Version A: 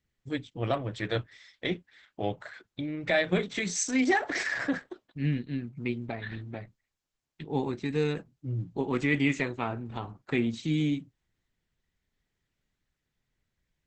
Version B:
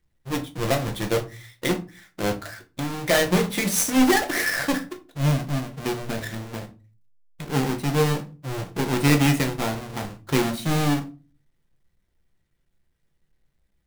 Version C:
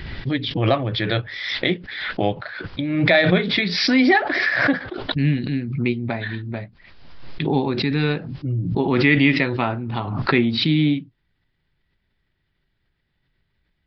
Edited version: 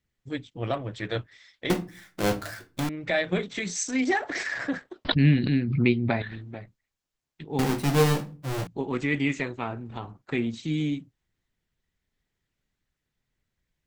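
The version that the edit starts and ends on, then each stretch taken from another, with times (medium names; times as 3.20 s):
A
1.70–2.89 s: from B
5.05–6.22 s: from C
7.59–8.67 s: from B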